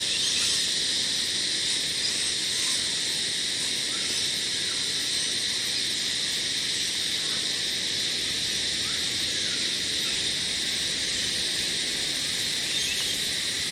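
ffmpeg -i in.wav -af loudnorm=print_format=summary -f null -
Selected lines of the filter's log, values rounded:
Input Integrated:    -24.5 LUFS
Input True Peak:     -12.1 dBTP
Input LRA:             0.7 LU
Input Threshold:     -34.5 LUFS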